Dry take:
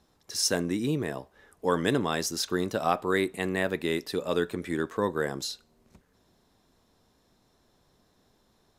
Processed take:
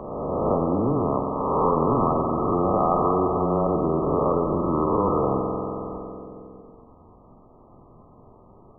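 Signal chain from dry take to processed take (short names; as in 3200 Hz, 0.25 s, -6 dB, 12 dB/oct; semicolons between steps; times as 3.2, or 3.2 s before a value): spectral swells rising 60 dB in 0.98 s; sample leveller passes 2; frequency shift -13 Hz; bit-crush 11-bit; brick-wall FIR low-pass 1300 Hz; spring tank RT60 1.9 s, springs 46 ms, chirp 45 ms, DRR 5.5 dB; spectral compressor 2:1; gain -2 dB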